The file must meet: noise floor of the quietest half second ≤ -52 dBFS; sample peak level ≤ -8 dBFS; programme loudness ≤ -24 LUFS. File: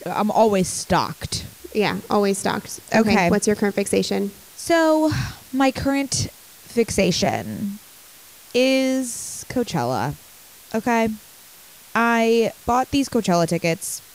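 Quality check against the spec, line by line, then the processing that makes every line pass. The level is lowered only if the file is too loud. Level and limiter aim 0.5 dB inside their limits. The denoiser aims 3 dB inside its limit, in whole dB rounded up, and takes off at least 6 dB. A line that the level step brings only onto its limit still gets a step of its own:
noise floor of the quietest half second -46 dBFS: fail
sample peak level -5.5 dBFS: fail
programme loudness -21.0 LUFS: fail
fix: denoiser 6 dB, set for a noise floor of -46 dBFS; gain -3.5 dB

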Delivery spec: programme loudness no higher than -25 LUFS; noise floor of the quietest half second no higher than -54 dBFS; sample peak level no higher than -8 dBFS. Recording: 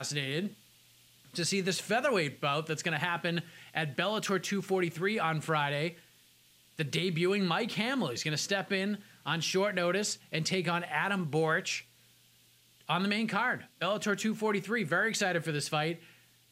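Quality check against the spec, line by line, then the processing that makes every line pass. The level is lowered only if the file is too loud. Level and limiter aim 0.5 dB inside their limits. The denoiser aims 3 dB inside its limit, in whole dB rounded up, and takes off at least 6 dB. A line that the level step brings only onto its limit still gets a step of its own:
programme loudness -31.5 LUFS: OK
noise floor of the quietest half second -64 dBFS: OK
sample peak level -13.5 dBFS: OK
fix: none

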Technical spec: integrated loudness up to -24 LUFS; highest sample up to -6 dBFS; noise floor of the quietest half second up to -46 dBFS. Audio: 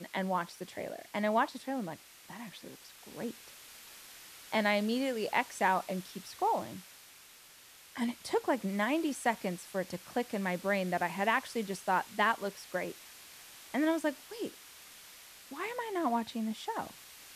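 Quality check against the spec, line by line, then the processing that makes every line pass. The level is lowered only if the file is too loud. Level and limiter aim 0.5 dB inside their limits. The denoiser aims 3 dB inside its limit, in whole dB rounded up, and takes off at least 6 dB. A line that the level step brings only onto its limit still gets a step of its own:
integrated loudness -34.0 LUFS: OK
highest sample -14.5 dBFS: OK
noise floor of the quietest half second -56 dBFS: OK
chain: none

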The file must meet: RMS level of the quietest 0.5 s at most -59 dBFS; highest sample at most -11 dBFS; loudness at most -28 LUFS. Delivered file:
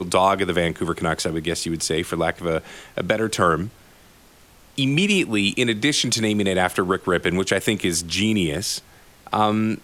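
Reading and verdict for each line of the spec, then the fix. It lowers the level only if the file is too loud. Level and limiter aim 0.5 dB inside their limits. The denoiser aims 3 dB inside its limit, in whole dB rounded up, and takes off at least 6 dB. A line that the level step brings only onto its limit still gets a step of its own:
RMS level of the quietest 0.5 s -51 dBFS: fail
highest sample -4.5 dBFS: fail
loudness -21.5 LUFS: fail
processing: denoiser 6 dB, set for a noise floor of -51 dBFS; gain -7 dB

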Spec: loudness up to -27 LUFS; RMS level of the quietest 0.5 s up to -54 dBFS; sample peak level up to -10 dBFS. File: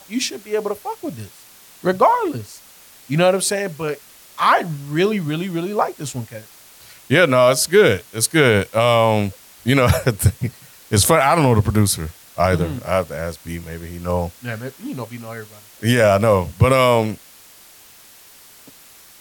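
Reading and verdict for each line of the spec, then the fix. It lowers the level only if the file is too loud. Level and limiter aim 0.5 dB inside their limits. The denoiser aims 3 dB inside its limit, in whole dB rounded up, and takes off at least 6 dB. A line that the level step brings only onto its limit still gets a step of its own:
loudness -18.0 LUFS: fail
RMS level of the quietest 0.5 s -46 dBFS: fail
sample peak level -3.5 dBFS: fail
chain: gain -9.5 dB

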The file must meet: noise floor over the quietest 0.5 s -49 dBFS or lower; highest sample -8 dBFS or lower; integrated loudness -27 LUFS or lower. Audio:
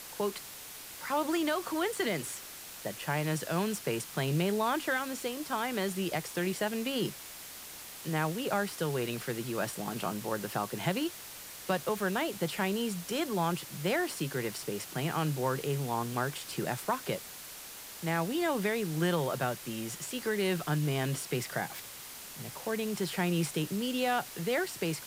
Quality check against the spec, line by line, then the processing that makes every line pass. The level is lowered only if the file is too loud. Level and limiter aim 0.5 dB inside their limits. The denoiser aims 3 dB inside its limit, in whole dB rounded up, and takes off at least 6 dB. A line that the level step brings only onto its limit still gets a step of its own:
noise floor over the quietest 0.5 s -46 dBFS: fail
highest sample -17.0 dBFS: OK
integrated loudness -33.5 LUFS: OK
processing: denoiser 6 dB, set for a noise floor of -46 dBFS

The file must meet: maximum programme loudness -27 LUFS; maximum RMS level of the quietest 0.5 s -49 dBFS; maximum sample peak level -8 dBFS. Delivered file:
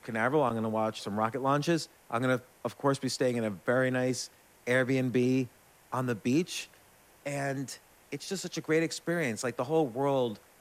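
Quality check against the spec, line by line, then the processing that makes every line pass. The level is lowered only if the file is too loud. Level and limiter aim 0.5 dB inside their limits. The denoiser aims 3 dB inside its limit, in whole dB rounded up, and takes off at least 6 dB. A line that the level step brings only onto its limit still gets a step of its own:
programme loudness -30.5 LUFS: OK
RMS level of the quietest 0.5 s -60 dBFS: OK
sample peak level -14.0 dBFS: OK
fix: none

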